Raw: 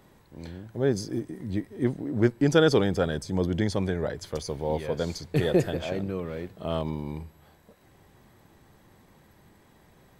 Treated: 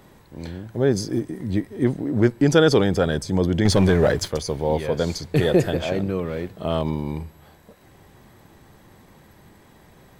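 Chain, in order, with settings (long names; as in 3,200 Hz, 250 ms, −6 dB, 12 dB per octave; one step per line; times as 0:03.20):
in parallel at −3 dB: brickwall limiter −17.5 dBFS, peak gain reduction 10 dB
0:03.65–0:04.28: on the sum: leveller curve on the samples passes 2
level +2 dB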